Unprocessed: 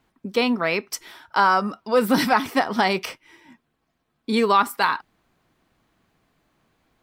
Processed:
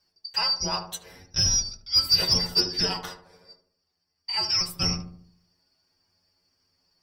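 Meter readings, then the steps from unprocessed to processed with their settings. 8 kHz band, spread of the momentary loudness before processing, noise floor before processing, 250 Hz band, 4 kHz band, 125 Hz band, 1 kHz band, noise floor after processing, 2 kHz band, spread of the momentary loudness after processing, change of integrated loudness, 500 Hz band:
+10.0 dB, 12 LU, -74 dBFS, -13.5 dB, +8.5 dB, +2.5 dB, -16.0 dB, -78 dBFS, -13.5 dB, 14 LU, -2.0 dB, -15.0 dB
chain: four frequency bands reordered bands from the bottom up 2341; bass shelf 180 Hz +6 dB; inharmonic resonator 88 Hz, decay 0.21 s, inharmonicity 0.002; on a send: filtered feedback delay 74 ms, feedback 52%, low-pass 980 Hz, level -7 dB; on the sum: Chebyshev shaper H 5 -24 dB, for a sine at -7.5 dBFS

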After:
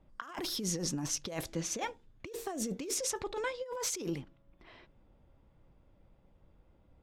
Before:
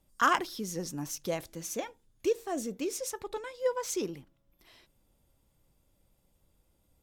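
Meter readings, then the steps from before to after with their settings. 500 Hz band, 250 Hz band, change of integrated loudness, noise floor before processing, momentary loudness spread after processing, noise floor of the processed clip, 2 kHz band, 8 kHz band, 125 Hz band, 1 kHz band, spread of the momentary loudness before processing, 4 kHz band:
-6.0 dB, -1.5 dB, -3.0 dB, -72 dBFS, 9 LU, -66 dBFS, -7.5 dB, +3.0 dB, +3.0 dB, -9.5 dB, 12 LU, +2.0 dB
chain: level-controlled noise filter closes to 1.9 kHz, open at -29.5 dBFS; compressor with a negative ratio -39 dBFS, ratio -1; trim +1.5 dB

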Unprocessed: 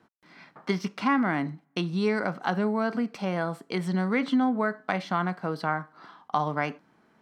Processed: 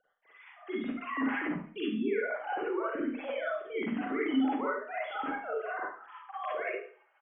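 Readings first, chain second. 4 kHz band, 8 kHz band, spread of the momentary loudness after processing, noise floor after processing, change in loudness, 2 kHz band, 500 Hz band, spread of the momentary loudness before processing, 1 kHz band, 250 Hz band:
-7.0 dB, no reading, 9 LU, -69 dBFS, -5.5 dB, -4.0 dB, -3.5 dB, 7 LU, -7.0 dB, -6.0 dB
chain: formants replaced by sine waves; hum notches 50/100/150/200/250 Hz; feedback comb 310 Hz, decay 1.1 s, mix 40%; in parallel at +0.5 dB: compressor with a negative ratio -39 dBFS, ratio -1; on the sum: rotary cabinet horn 6 Hz; on a send: delay 72 ms -12.5 dB; on the sum: Schroeder reverb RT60 0.41 s, DRR -7 dB; trim -9 dB

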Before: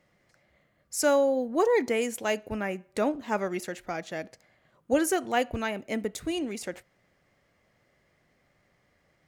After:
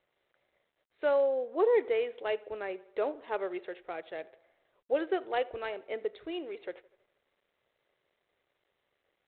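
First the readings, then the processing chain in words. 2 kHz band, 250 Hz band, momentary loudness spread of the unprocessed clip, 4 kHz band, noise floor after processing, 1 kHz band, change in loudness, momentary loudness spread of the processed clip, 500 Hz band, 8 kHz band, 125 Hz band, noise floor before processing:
-7.0 dB, -11.0 dB, 12 LU, -8.5 dB, -81 dBFS, -6.0 dB, -4.0 dB, 15 LU, -2.5 dB, under -40 dB, under -20 dB, -70 dBFS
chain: resonant low shelf 300 Hz -10.5 dB, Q 3; on a send: tape echo 81 ms, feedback 63%, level -21 dB, low-pass 2.5 kHz; on the sum: trim -7.5 dB; G.726 32 kbps 8 kHz

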